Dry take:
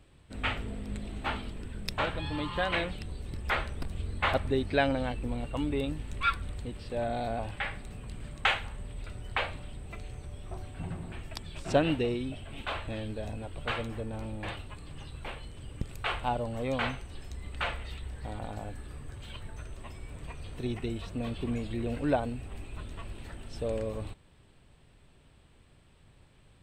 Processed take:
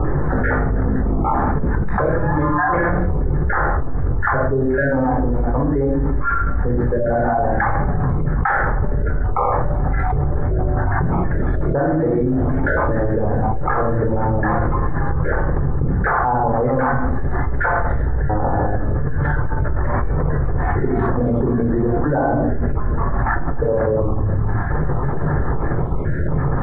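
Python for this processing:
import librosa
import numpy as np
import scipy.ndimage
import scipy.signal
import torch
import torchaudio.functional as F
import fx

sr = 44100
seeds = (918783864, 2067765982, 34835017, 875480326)

y = fx.spec_dropout(x, sr, seeds[0], share_pct=39)
y = scipy.signal.sosfilt(scipy.signal.ellip(4, 1.0, 40, 1700.0, 'lowpass', fs=sr, output='sos'), y)
y = fx.low_shelf(y, sr, hz=170.0, db=-4.0)
y = fx.room_shoebox(y, sr, seeds[1], volume_m3=1000.0, walls='furnished', distance_m=4.1)
y = fx.env_flatten(y, sr, amount_pct=100)
y = y * 10.0 ** (1.0 / 20.0)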